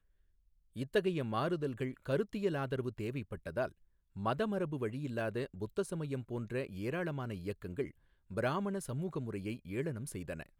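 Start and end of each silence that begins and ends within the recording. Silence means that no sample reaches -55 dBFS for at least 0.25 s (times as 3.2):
3.72–4.15
7.91–8.3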